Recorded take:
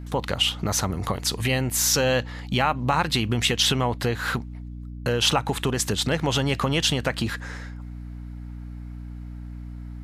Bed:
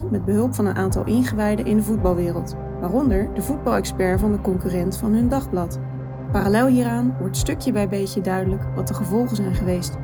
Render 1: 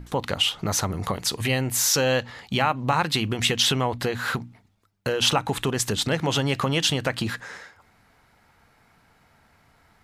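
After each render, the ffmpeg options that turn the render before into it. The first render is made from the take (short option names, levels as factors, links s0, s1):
-af "bandreject=f=60:t=h:w=6,bandreject=f=120:t=h:w=6,bandreject=f=180:t=h:w=6,bandreject=f=240:t=h:w=6,bandreject=f=300:t=h:w=6"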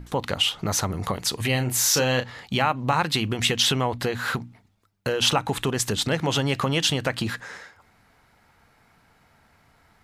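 -filter_complex "[0:a]asettb=1/sr,asplit=3[s0][s1][s2];[s0]atrim=end=1.514[s3];[s1]atrim=start=1.51:end=2.46,asetpts=PTS-STARTPTS,afade=t=in:d=0.004:c=qsin,afade=t=out:st=0.946:d=0.004:c=qsin,asplit=2[s4][s5];[s5]adelay=32,volume=0.376[s6];[s4][s6]amix=inputs=2:normalize=0,atrim=end_sample=41895[s7];[s2]atrim=start=2.456[s8];[s3][s7]acrossfade=d=0.004:c1=hsin:c2=qsin[s9];[s9][s8]acrossfade=d=0.004:c1=qsin:c2=hsin"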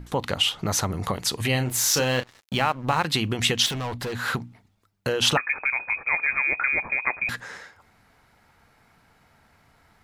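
-filter_complex "[0:a]asettb=1/sr,asplit=3[s0][s1][s2];[s0]atrim=end=1.664[s3];[s1]atrim=start=1.66:end=3.05,asetpts=PTS-STARTPTS,afade=t=in:d=0.004:c=qsin,afade=t=out:st=1.386:d=0.004:c=qsin,aeval=exprs='sgn(val(0))*max(abs(val(0))-0.0141,0)':c=same[s4];[s2]atrim=start=3.046[s5];[s3][s4]acrossfade=d=0.004:c1=hsin:c2=qsin[s6];[s6][s5]acrossfade=d=0.004:c1=qsin:c2=hsin,asettb=1/sr,asplit=3[s7][s8][s9];[s7]atrim=end=3.664[s10];[s8]atrim=start=3.66:end=4.13,asetpts=PTS-STARTPTS,afade=t=in:d=0.004:c=qsin,afade=t=out:st=0.466:d=0.004:c=qsin,volume=22.4,asoftclip=hard,volume=0.0447[s11];[s9]atrim=start=4.126[s12];[s10][s11]acrossfade=d=0.004:c1=hsin:c2=qsin[s13];[s13][s12]acrossfade=d=0.004:c1=qsin:c2=hsin,asettb=1/sr,asplit=3[s14][s15][s16];[s14]atrim=end=5.374[s17];[s15]atrim=start=5.37:end=7.29,asetpts=PTS-STARTPTS,afade=t=in:d=0.004:c=qsin,afade=t=out:st=1.916:d=0.004:c=qsin,lowpass=f=2200:t=q:w=0.5098,lowpass=f=2200:t=q:w=0.6013,lowpass=f=2200:t=q:w=0.9,lowpass=f=2200:t=q:w=2.563,afreqshift=-2600[s18];[s16]atrim=start=7.286[s19];[s17][s18]acrossfade=d=0.004:c1=hsin:c2=qsin[s20];[s20][s19]acrossfade=d=0.004:c1=qsin:c2=hsin"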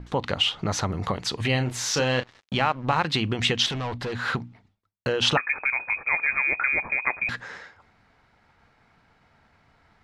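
-af "agate=range=0.0224:threshold=0.00141:ratio=3:detection=peak,lowpass=4900"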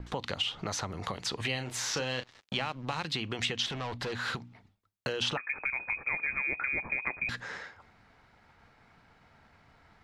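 -filter_complex "[0:a]acrossover=split=410|3000[s0][s1][s2];[s0]acompressor=threshold=0.01:ratio=4[s3];[s1]acompressor=threshold=0.0158:ratio=4[s4];[s2]acompressor=threshold=0.0178:ratio=4[s5];[s3][s4][s5]amix=inputs=3:normalize=0"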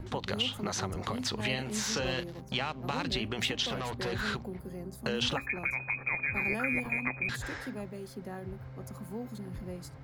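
-filter_complex "[1:a]volume=0.106[s0];[0:a][s0]amix=inputs=2:normalize=0"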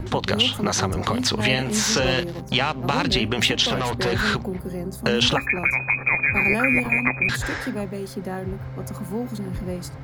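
-af "volume=3.76"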